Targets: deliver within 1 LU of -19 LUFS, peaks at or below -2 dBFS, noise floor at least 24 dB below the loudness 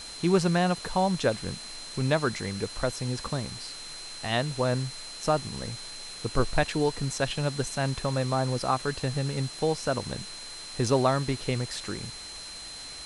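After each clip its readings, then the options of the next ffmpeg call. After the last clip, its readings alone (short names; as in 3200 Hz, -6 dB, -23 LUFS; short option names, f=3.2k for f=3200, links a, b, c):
steady tone 4100 Hz; tone level -41 dBFS; noise floor -41 dBFS; noise floor target -53 dBFS; loudness -29.0 LUFS; peak -10.0 dBFS; loudness target -19.0 LUFS
-> -af "bandreject=f=4.1k:w=30"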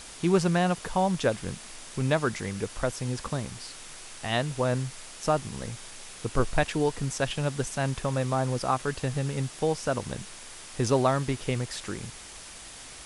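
steady tone none; noise floor -45 dBFS; noise floor target -53 dBFS
-> -af "afftdn=nr=8:nf=-45"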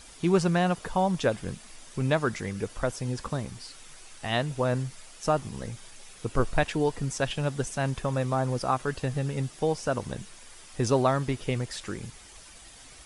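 noise floor -50 dBFS; noise floor target -53 dBFS
-> -af "afftdn=nr=6:nf=-50"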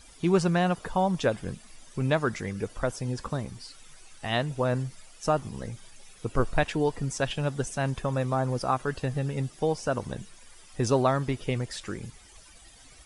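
noise floor -53 dBFS; loudness -29.0 LUFS; peak -10.0 dBFS; loudness target -19.0 LUFS
-> -af "volume=10dB,alimiter=limit=-2dB:level=0:latency=1"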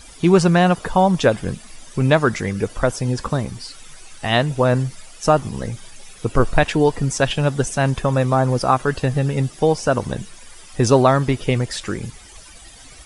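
loudness -19.0 LUFS; peak -2.0 dBFS; noise floor -43 dBFS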